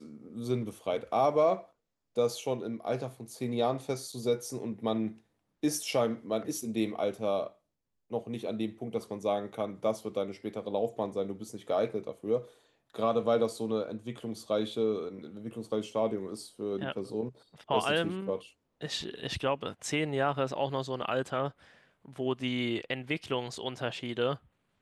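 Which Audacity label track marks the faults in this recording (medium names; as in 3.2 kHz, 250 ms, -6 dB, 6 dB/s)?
4.120000	4.130000	dropout 5.8 ms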